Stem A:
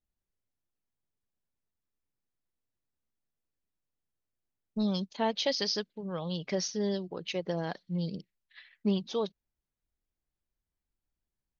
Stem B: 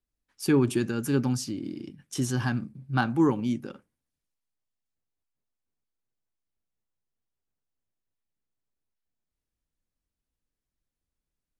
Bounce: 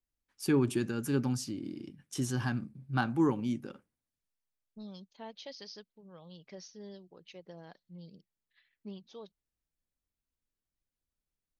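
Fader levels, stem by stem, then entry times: -16.5, -5.0 dB; 0.00, 0.00 s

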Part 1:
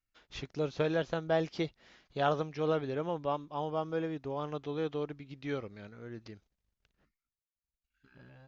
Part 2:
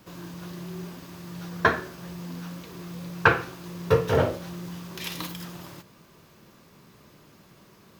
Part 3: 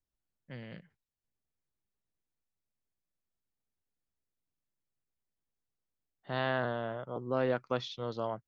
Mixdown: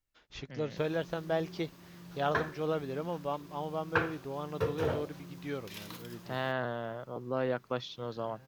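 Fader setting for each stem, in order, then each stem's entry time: -2.0, -11.5, -1.5 dB; 0.00, 0.70, 0.00 s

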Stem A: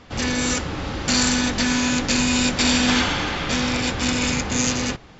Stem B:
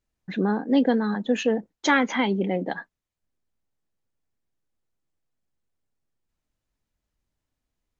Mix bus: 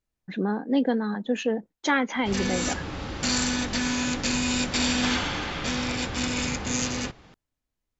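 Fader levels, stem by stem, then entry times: -6.0, -3.0 dB; 2.15, 0.00 s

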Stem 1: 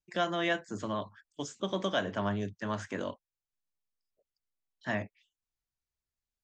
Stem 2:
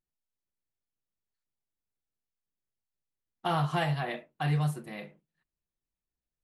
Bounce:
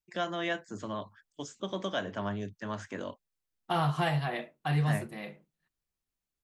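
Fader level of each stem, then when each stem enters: -2.5, 0.0 dB; 0.00, 0.25 s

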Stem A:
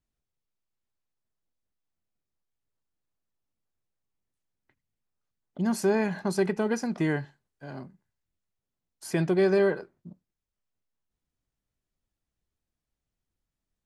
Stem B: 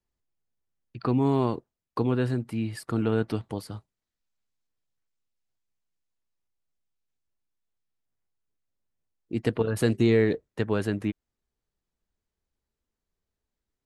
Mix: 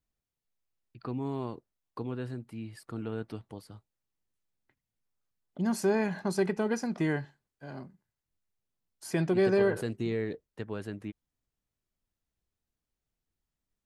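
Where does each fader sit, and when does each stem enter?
-2.5, -11.0 dB; 0.00, 0.00 s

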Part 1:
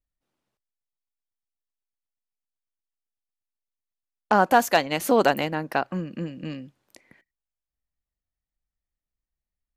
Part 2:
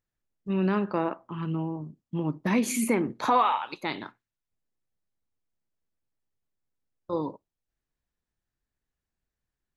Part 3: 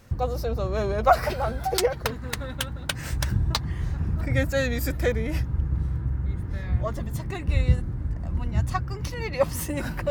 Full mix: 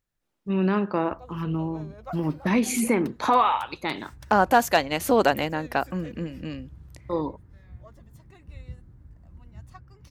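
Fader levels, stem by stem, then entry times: -0.5, +2.5, -20.0 dB; 0.00, 0.00, 1.00 s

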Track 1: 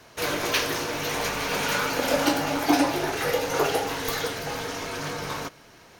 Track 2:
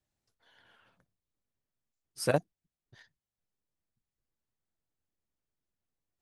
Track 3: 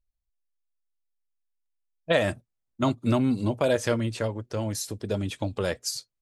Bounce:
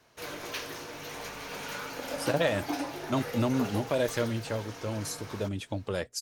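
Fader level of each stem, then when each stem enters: -12.5, -2.0, -4.5 dB; 0.00, 0.00, 0.30 s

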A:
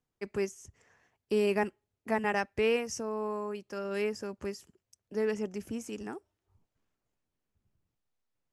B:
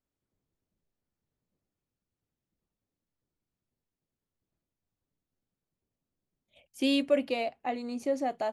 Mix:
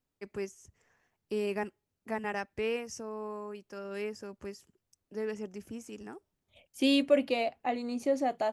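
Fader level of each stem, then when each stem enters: -5.0, +1.0 dB; 0.00, 0.00 s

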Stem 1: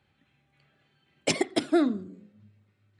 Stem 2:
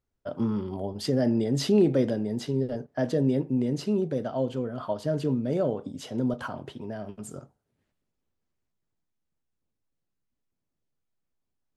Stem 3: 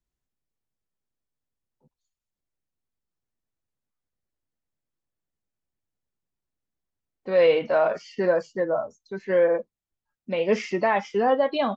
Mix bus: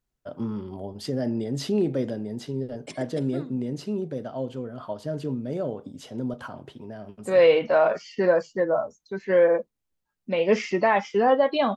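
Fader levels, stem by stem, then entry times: -15.0, -3.0, +1.5 dB; 1.60, 0.00, 0.00 s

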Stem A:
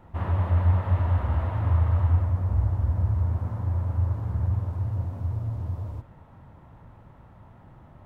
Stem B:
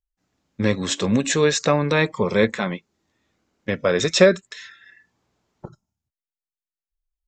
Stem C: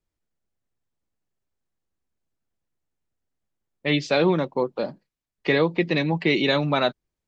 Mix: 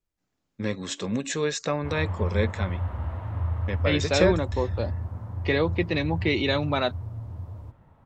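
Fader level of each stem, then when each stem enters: -6.0, -8.5, -3.5 dB; 1.70, 0.00, 0.00 s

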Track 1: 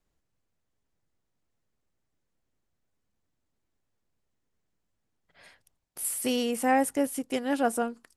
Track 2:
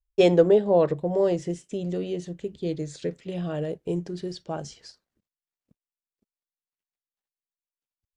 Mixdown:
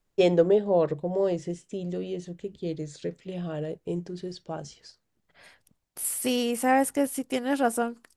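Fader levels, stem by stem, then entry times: +1.5, -3.0 dB; 0.00, 0.00 s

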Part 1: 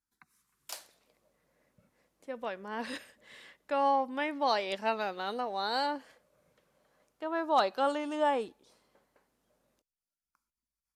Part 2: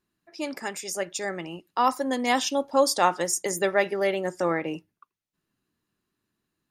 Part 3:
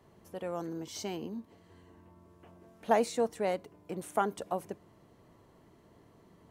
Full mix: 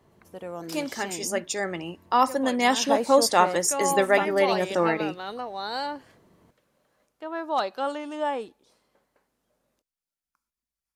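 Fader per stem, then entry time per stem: +0.5, +2.0, +0.5 dB; 0.00, 0.35, 0.00 s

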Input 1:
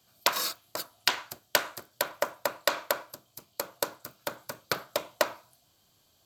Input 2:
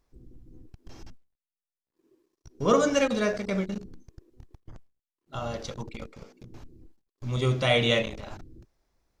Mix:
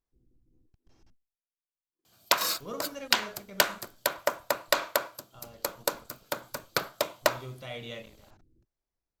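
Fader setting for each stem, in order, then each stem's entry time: +1.5, -17.5 dB; 2.05, 0.00 s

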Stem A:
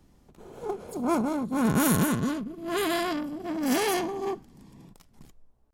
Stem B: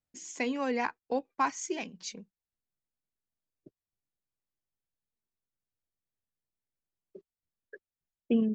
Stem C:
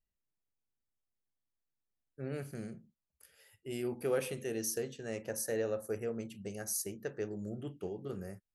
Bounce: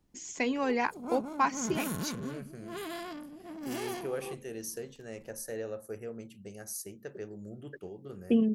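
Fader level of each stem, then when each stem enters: -12.5, +1.5, -3.5 dB; 0.00, 0.00, 0.00 s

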